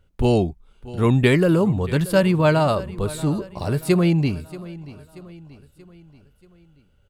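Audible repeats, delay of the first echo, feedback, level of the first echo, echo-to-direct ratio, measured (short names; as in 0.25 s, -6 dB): 3, 0.632 s, 50%, -18.0 dB, -17.0 dB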